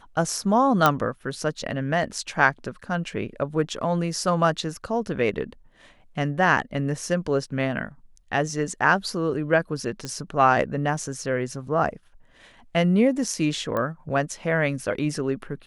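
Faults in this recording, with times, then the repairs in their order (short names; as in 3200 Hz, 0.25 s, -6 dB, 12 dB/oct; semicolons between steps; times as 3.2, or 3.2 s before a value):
0.86 pop -4 dBFS
10.05 pop -17 dBFS
13.77 pop -15 dBFS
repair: de-click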